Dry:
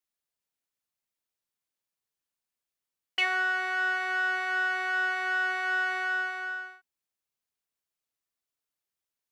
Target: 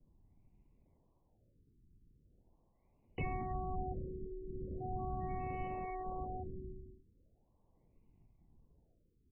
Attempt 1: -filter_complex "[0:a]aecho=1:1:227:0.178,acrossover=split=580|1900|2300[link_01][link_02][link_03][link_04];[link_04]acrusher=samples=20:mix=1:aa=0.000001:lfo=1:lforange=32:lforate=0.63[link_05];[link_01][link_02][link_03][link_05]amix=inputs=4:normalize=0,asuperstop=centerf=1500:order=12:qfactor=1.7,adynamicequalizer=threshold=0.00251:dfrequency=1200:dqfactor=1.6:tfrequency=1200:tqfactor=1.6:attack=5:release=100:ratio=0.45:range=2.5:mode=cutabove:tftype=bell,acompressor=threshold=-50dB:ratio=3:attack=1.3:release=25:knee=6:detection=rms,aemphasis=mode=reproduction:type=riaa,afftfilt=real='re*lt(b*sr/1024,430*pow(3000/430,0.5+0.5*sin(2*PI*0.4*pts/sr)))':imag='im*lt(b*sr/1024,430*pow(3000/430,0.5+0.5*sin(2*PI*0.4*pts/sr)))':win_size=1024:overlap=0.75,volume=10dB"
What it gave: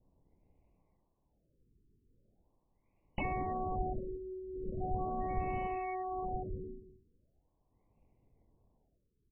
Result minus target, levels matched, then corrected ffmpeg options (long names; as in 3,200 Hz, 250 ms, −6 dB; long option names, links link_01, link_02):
sample-and-hold swept by an LFO: distortion −32 dB; downward compressor: peak gain reduction −4.5 dB
-filter_complex "[0:a]aecho=1:1:227:0.178,acrossover=split=580|1900|2300[link_01][link_02][link_03][link_04];[link_04]acrusher=samples=49:mix=1:aa=0.000001:lfo=1:lforange=78.4:lforate=0.63[link_05];[link_01][link_02][link_03][link_05]amix=inputs=4:normalize=0,asuperstop=centerf=1500:order=12:qfactor=1.7,adynamicequalizer=threshold=0.00251:dfrequency=1200:dqfactor=1.6:tfrequency=1200:tqfactor=1.6:attack=5:release=100:ratio=0.45:range=2.5:mode=cutabove:tftype=bell,acompressor=threshold=-57.5dB:ratio=3:attack=1.3:release=25:knee=6:detection=rms,aemphasis=mode=reproduction:type=riaa,afftfilt=real='re*lt(b*sr/1024,430*pow(3000/430,0.5+0.5*sin(2*PI*0.4*pts/sr)))':imag='im*lt(b*sr/1024,430*pow(3000/430,0.5+0.5*sin(2*PI*0.4*pts/sr)))':win_size=1024:overlap=0.75,volume=10dB"